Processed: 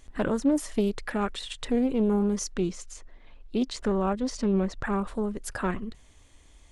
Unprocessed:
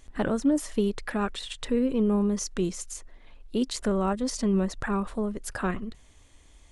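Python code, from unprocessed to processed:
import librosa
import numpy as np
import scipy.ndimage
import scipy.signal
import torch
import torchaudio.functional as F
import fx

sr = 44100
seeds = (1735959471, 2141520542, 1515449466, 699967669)

y = fx.air_absorb(x, sr, metres=69.0, at=(2.51, 4.85))
y = fx.doppler_dist(y, sr, depth_ms=0.2)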